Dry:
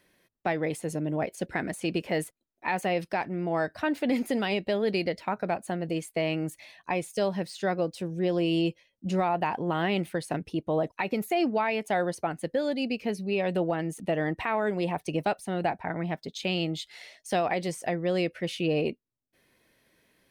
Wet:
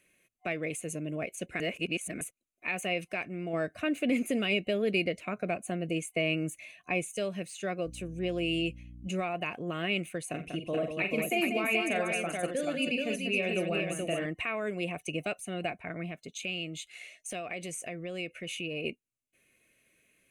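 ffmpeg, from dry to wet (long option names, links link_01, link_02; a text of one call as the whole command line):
ffmpeg -i in.wav -filter_complex "[0:a]asettb=1/sr,asplit=3[link_01][link_02][link_03];[link_01]atrim=end=3.534[link_04];[link_02]atrim=start=3.53:end=7.1,asetpts=PTS-STARTPTS,afade=type=in:duration=0.004:curve=qsin,afade=type=out:start_time=3.566:duration=0.004:curve=qsin,equalizer=frequency=210:width=0.3:gain=4.5[link_05];[link_03]atrim=start=7.096[link_06];[link_04][link_05]acrossfade=duration=0.004:curve1=hsin:curve2=qsin[link_07];[link_07][link_06]acrossfade=duration=0.004:curve1=qsin:curve2=hsin,asettb=1/sr,asplit=3[link_08][link_09][link_10];[link_08]atrim=end=7.864[link_11];[link_09]atrim=start=7.86:end=9.08,asetpts=PTS-STARTPTS,afade=type=in:duration=0.004:curve=qsin,afade=type=out:start_time=1.216:duration=0.004:curve=qsin,aeval=exprs='val(0)+0.01*(sin(2*PI*60*n/s)+sin(2*PI*2*60*n/s)/2+sin(2*PI*3*60*n/s)/3+sin(2*PI*4*60*n/s)/4+sin(2*PI*5*60*n/s)/5)':channel_layout=same[link_12];[link_10]atrim=start=9.076[link_13];[link_11][link_12]acrossfade=duration=0.004:curve1=hsin:curve2=qsin[link_14];[link_14][link_13]acrossfade=duration=0.004:curve1=qsin:curve2=hsin,asettb=1/sr,asplit=3[link_15][link_16][link_17];[link_15]atrim=end=10.304[link_18];[link_16]atrim=start=10.3:end=14.26,asetpts=PTS-STARTPTS,afade=type=in:duration=0.004:curve=qsin,afade=type=out:start_time=3.956:duration=0.004:curve=qsin,aecho=1:1:41|49|88|191|431:0.376|0.266|0.112|0.473|0.668,atrim=end_sample=174636[link_19];[link_17]atrim=start=14.256[link_20];[link_18][link_19]acrossfade=duration=0.004:curve1=hsin:curve2=qsin[link_21];[link_21][link_20]acrossfade=duration=0.004:curve1=qsin:curve2=hsin,asplit=3[link_22][link_23][link_24];[link_22]afade=type=out:start_time=16.08:duration=0.02[link_25];[link_23]acompressor=threshold=-31dB:ratio=2.5:attack=3.2:release=140:knee=1:detection=peak,afade=type=in:start_time=16.08:duration=0.02,afade=type=out:start_time=18.83:duration=0.02[link_26];[link_24]afade=type=in:start_time=18.83:duration=0.02[link_27];[link_25][link_26][link_27]amix=inputs=3:normalize=0,asplit=3[link_28][link_29][link_30];[link_28]atrim=end=1.602[link_31];[link_29]atrim=start=1.598:end=2.212,asetpts=PTS-STARTPTS,areverse[link_32];[link_30]atrim=start=2.208[link_33];[link_31][link_32]acrossfade=duration=0.004:curve1=hsin:curve2=hsin[link_34];[link_34][link_33]acrossfade=duration=0.004:curve1=hsin:curve2=hsin,superequalizer=9b=0.251:12b=3.16:14b=0.562:15b=2.82:16b=2.82,volume=-6dB" out.wav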